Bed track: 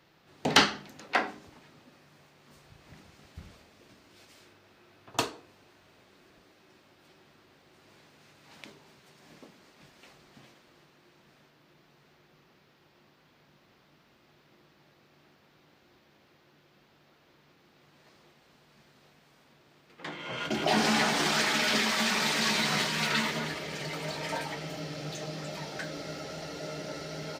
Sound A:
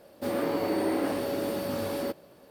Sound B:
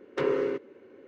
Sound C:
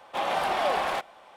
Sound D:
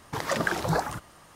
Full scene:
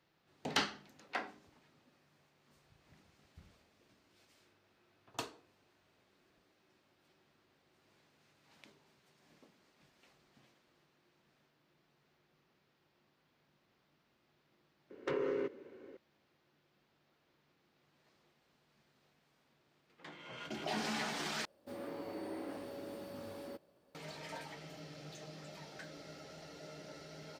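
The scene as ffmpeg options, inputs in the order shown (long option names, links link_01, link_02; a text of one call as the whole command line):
ffmpeg -i bed.wav -i cue0.wav -i cue1.wav -filter_complex "[0:a]volume=-12.5dB[link_01];[2:a]acompressor=threshold=-29dB:ratio=6:attack=3.2:release=140:knee=1:detection=peak[link_02];[1:a]equalizer=frequency=12000:width_type=o:width=0.49:gain=-6[link_03];[link_01]asplit=2[link_04][link_05];[link_04]atrim=end=21.454[link_06];[link_03]atrim=end=2.5,asetpts=PTS-STARTPTS,volume=-16dB[link_07];[link_05]atrim=start=23.946[link_08];[link_02]atrim=end=1.07,asetpts=PTS-STARTPTS,volume=-2.5dB,afade=type=in:duration=0.004:curve=hsin,afade=type=out:start_time=1.066:duration=0.004:curve=hsin,adelay=14900[link_09];[link_06][link_07]acrossfade=duration=0.004:curve1=hsin:curve2=hsin[link_10];[link_10][link_08]acrossfade=duration=0.004:curve1=hsin:curve2=hsin[link_11];[link_11][link_09]amix=inputs=2:normalize=0" out.wav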